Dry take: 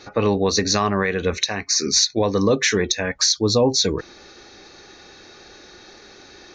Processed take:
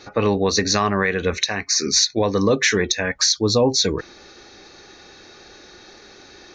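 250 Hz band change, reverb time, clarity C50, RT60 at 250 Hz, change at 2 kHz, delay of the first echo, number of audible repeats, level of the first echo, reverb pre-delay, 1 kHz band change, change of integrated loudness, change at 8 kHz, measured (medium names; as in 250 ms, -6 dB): 0.0 dB, no reverb, no reverb, no reverb, +2.5 dB, no echo, no echo, no echo, no reverb, +1.0 dB, +0.5 dB, 0.0 dB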